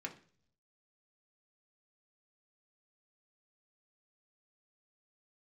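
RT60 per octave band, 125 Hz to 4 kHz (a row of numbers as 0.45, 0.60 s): 1.0, 0.70, 0.55, 0.40, 0.45, 0.55 s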